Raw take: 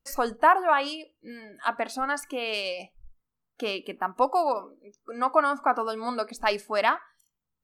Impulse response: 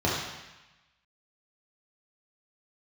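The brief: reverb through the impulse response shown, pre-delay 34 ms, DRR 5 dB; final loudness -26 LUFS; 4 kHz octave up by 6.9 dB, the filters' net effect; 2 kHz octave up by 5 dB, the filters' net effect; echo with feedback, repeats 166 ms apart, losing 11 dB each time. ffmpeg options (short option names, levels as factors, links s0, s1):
-filter_complex "[0:a]equalizer=f=2000:t=o:g=5,equalizer=f=4000:t=o:g=7.5,aecho=1:1:166|332|498:0.282|0.0789|0.0221,asplit=2[s0][s1];[1:a]atrim=start_sample=2205,adelay=34[s2];[s1][s2]afir=irnorm=-1:irlink=0,volume=0.119[s3];[s0][s3]amix=inputs=2:normalize=0,volume=0.708"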